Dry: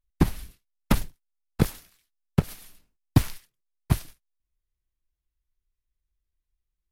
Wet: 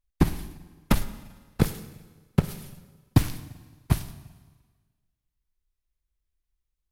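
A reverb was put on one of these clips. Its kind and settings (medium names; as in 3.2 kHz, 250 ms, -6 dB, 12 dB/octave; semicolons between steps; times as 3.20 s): Schroeder reverb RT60 1.4 s, DRR 13 dB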